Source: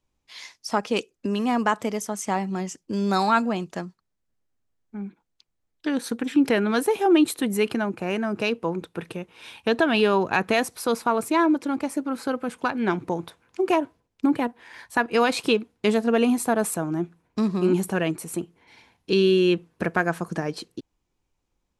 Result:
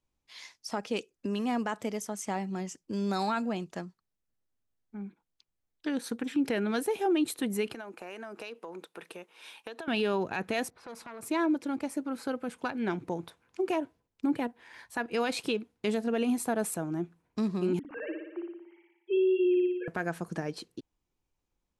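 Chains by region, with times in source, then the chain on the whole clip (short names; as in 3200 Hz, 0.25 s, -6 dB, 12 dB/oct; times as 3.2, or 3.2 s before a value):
7.74–9.88 HPF 400 Hz + high shelf 8400 Hz +5 dB + compressor, threshold -31 dBFS
10.7–11.23 low-pass opened by the level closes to 1400 Hz, open at -19.5 dBFS + compressor 3:1, threshold -32 dBFS + core saturation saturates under 1300 Hz
17.79–19.88 sine-wave speech + dynamic EQ 580 Hz, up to +3 dB, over -28 dBFS, Q 1 + flutter echo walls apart 10 m, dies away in 0.92 s
whole clip: dynamic EQ 1100 Hz, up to -5 dB, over -40 dBFS, Q 2.7; limiter -14 dBFS; gain -6.5 dB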